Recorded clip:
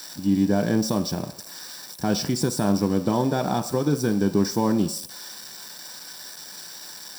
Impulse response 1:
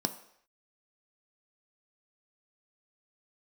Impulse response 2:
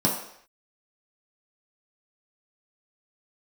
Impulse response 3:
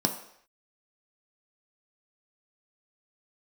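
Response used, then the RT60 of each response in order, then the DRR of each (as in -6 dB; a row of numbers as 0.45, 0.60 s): 1; not exponential, not exponential, not exponential; 8.0, -4.0, 3.5 dB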